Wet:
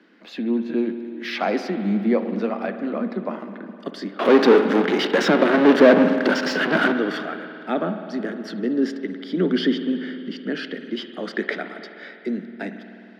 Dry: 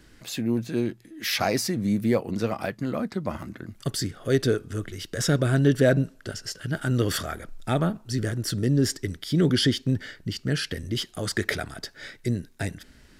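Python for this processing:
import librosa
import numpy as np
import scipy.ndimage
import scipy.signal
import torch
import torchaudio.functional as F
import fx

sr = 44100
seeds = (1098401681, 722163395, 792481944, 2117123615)

y = fx.power_curve(x, sr, exponent=0.35, at=(4.19, 6.92))
y = scipy.signal.sosfilt(scipy.signal.butter(12, 190.0, 'highpass', fs=sr, output='sos'), y)
y = fx.air_absorb(y, sr, metres=310.0)
y = fx.rev_spring(y, sr, rt60_s=2.9, pass_ms=(51,), chirp_ms=25, drr_db=8.5)
y = y * librosa.db_to_amplitude(3.5)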